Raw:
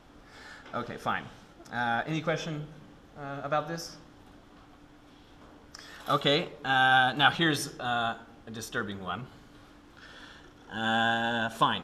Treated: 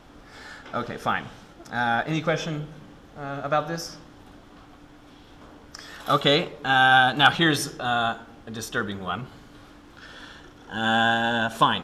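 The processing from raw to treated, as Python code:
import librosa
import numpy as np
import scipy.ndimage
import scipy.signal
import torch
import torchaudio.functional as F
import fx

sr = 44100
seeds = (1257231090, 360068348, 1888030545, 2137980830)

y = np.clip(x, -10.0 ** (-10.5 / 20.0), 10.0 ** (-10.5 / 20.0))
y = y * librosa.db_to_amplitude(5.5)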